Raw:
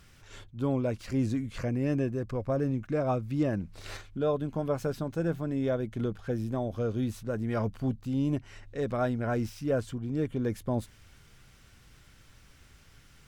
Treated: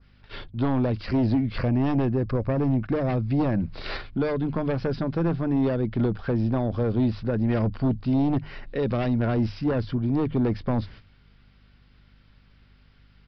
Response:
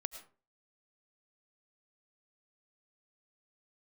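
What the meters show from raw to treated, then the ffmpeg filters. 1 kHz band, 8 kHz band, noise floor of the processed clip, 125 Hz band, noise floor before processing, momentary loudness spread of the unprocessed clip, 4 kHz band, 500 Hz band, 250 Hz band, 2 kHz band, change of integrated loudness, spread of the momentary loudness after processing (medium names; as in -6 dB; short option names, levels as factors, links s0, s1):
+4.5 dB, under -15 dB, -57 dBFS, +7.0 dB, -57 dBFS, 5 LU, +6.5 dB, +3.0 dB, +7.0 dB, +5.0 dB, +6.0 dB, 5 LU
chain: -filter_complex "[0:a]agate=range=0.2:threshold=0.00316:ratio=16:detection=peak,aresample=11025,aeval=exprs='0.141*sin(PI/2*2.24*val(0)/0.141)':c=same,aresample=44100,bandreject=f=50:t=h:w=6,bandreject=f=100:t=h:w=6,bandreject=f=150:t=h:w=6,acrossover=split=340|3000[s0][s1][s2];[s1]acompressor=threshold=0.0398:ratio=6[s3];[s0][s3][s2]amix=inputs=3:normalize=0,aeval=exprs='val(0)+0.00158*(sin(2*PI*50*n/s)+sin(2*PI*2*50*n/s)/2+sin(2*PI*3*50*n/s)/3+sin(2*PI*4*50*n/s)/4+sin(2*PI*5*50*n/s)/5)':c=same,adynamicequalizer=threshold=0.00355:dfrequency=3300:dqfactor=1:tfrequency=3300:tqfactor=1:attack=5:release=100:ratio=0.375:range=2.5:mode=cutabove:tftype=bell"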